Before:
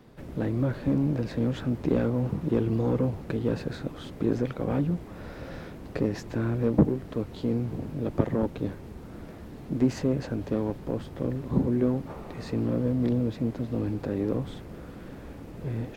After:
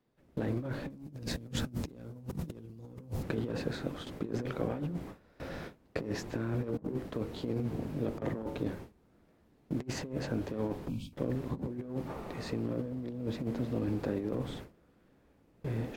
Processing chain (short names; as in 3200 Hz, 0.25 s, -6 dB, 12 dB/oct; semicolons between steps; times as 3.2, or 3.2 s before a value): 0.9–3.23 tone controls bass +9 dB, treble +13 dB; 10.88–11.13 spectral delete 290–2200 Hz; low shelf 170 Hz -5 dB; de-hum 46.61 Hz, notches 34; gate with hold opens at -32 dBFS; negative-ratio compressor -31 dBFS, ratio -0.5; gain -4 dB